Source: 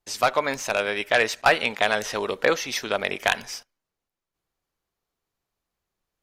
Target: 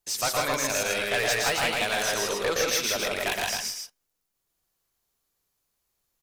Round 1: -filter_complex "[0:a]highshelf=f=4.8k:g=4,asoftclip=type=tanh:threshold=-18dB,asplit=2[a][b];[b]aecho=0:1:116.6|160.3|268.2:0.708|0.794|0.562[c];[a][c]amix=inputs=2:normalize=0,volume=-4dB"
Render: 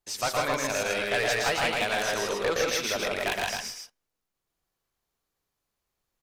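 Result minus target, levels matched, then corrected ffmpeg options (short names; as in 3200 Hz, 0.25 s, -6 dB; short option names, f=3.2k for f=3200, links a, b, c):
8000 Hz band -4.0 dB
-filter_complex "[0:a]highshelf=f=4.8k:g=14,asoftclip=type=tanh:threshold=-18dB,asplit=2[a][b];[b]aecho=0:1:116.6|160.3|268.2:0.708|0.794|0.562[c];[a][c]amix=inputs=2:normalize=0,volume=-4dB"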